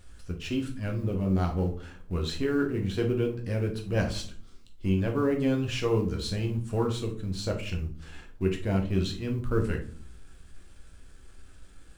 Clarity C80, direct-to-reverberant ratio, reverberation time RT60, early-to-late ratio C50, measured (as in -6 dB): 15.5 dB, 1.5 dB, 0.50 s, 9.5 dB